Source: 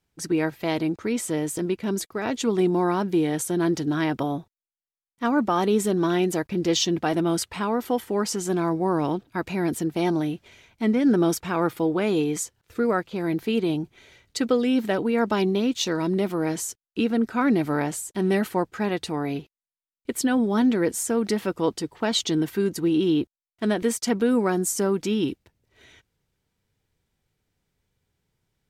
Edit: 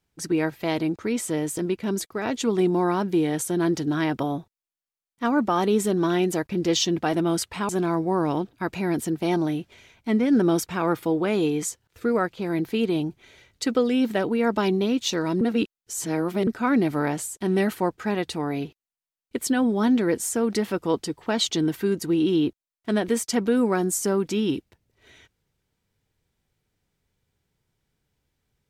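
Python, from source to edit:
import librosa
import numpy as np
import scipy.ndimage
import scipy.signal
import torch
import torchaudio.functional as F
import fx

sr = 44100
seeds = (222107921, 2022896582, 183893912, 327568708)

y = fx.edit(x, sr, fx.cut(start_s=7.69, length_s=0.74),
    fx.reverse_span(start_s=16.15, length_s=1.06), tone=tone)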